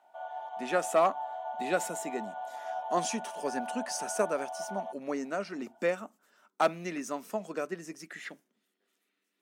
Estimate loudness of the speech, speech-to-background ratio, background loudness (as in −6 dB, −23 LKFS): −33.5 LKFS, 6.0 dB, −39.5 LKFS